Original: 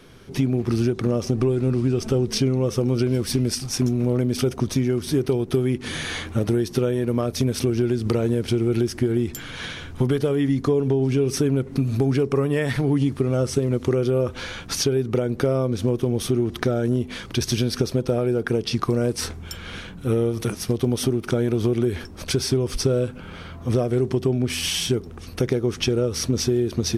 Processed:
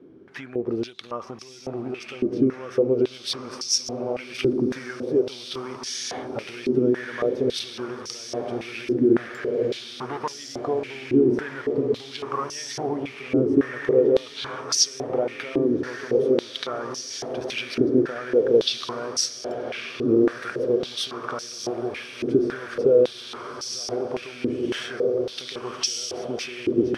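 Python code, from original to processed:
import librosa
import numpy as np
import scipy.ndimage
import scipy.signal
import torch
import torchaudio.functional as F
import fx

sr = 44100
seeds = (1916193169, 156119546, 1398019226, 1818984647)

p1 = fx.lower_of_two(x, sr, delay_ms=0.44, at=(9.18, 10.33))
p2 = p1 + fx.echo_diffused(p1, sr, ms=1253, feedback_pct=75, wet_db=-6.0, dry=0)
p3 = fx.filter_held_bandpass(p2, sr, hz=3.6, low_hz=320.0, high_hz=5500.0)
y = p3 * 10.0 ** (8.5 / 20.0)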